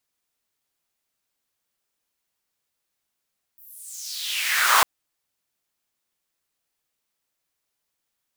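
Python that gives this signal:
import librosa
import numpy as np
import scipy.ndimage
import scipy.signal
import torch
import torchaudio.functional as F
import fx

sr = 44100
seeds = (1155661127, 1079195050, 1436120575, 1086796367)

y = fx.riser_noise(sr, seeds[0], length_s=1.25, colour='pink', kind='highpass', start_hz=16000.0, end_hz=940.0, q=4.0, swell_db=29.5, law='exponential')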